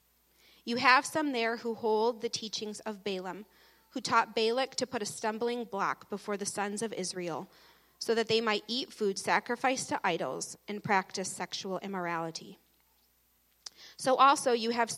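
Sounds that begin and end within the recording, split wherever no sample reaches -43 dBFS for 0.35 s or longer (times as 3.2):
0.67–3.42
3.96–7.44
8.01–12.52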